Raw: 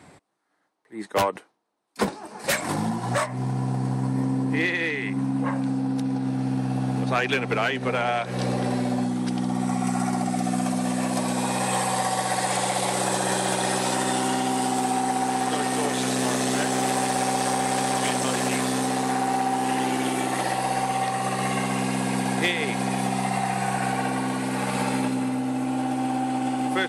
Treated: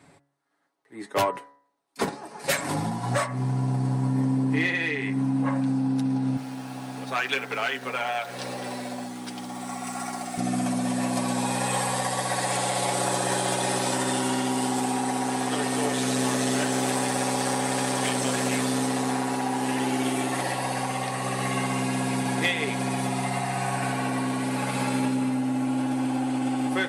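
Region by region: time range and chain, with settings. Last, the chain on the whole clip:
0:06.37–0:10.38: centre clipping without the shift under −40.5 dBFS + high-pass filter 760 Hz 6 dB per octave
whole clip: comb filter 7.2 ms, depth 52%; hum removal 70.51 Hz, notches 29; automatic gain control gain up to 4 dB; level −6 dB

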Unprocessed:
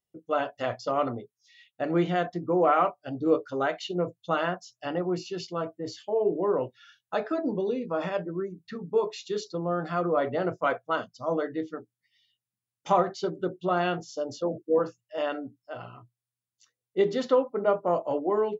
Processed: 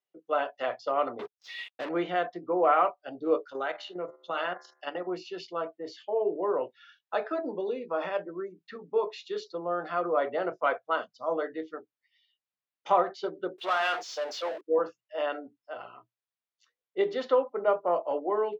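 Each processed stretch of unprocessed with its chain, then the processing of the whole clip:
0:01.19–0:01.89: parametric band 730 Hz −7 dB + downward compressor 4 to 1, threshold −37 dBFS + leveller curve on the samples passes 5
0:03.45–0:05.07: high-shelf EQ 2,200 Hz +7 dB + hum removal 74.15 Hz, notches 29 + output level in coarse steps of 10 dB
0:13.58–0:14.61: high-pass filter 960 Hz + power curve on the samples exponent 0.5
whole clip: high-pass filter 200 Hz 12 dB per octave; three-way crossover with the lows and the highs turned down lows −12 dB, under 360 Hz, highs −19 dB, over 4,500 Hz

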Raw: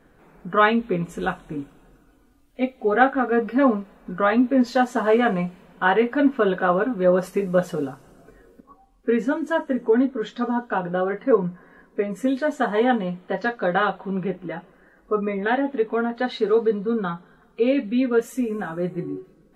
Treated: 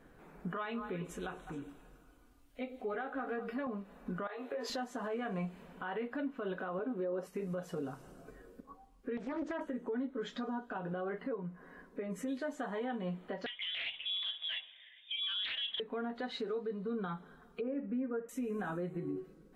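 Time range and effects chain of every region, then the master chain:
0:00.53–0:03.67: parametric band 250 Hz −4.5 dB 2.3 octaves + downward compressor 1.5 to 1, threshold −44 dBFS + echo through a band-pass that steps 104 ms, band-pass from 370 Hz, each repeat 1.4 octaves, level −8 dB
0:04.27–0:04.70: Butterworth high-pass 350 Hz 48 dB per octave + downward compressor 4 to 1, threshold −29 dBFS + double-tracking delay 24 ms −3 dB
0:06.79–0:07.27: high-pass filter 260 Hz 6 dB per octave + parametric band 370 Hz +10.5 dB 2.1 octaves
0:09.17–0:09.61: low-pass filter 5,500 Hz 24 dB per octave + downward compressor 12 to 1, threshold −25 dBFS + highs frequency-modulated by the lows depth 0.7 ms
0:13.46–0:15.80: downward compressor 4 to 1, threshold −25 dBFS + voice inversion scrambler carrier 3,600 Hz + highs frequency-modulated by the lows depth 0.45 ms
0:17.61–0:18.29: low-pass filter 1,600 Hz 24 dB per octave + flutter between parallel walls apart 10.3 metres, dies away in 0.23 s + one half of a high-frequency compander encoder only
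whole clip: downward compressor 6 to 1, threshold −29 dBFS; brickwall limiter −26 dBFS; level −4 dB

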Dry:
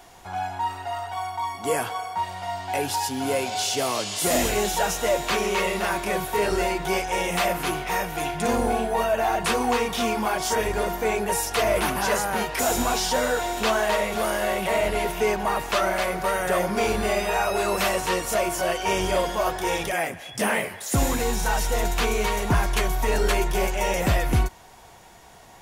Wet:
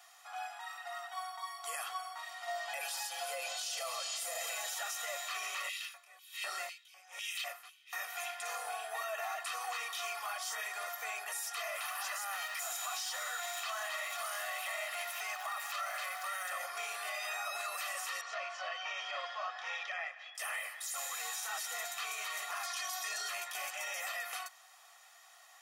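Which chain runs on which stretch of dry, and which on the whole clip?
0:02.47–0:04.74: parametric band 510 Hz +11 dB 0.87 octaves + comb filter 6 ms, depth 96% + downward compressor, threshold −16 dBFS
0:05.69–0:07.93: auto-filter high-pass square 2 Hz 240–3,000 Hz + tremolo with a sine in dB 1.2 Hz, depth 23 dB
0:11.75–0:16.53: converter with a step at zero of −36 dBFS + high-pass filter 560 Hz 24 dB per octave
0:18.21–0:20.35: Bessel low-pass filter 3,400 Hz, order 6 + low shelf with overshoot 200 Hz +10.5 dB, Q 3
0:22.63–0:23.29: parametric band 5,400 Hz +11 dB 1.1 octaves + comb filter 2.8 ms, depth 91%
whole clip: high-pass filter 940 Hz 24 dB per octave; comb filter 1.6 ms, depth 82%; brickwall limiter −21.5 dBFS; level −8.5 dB

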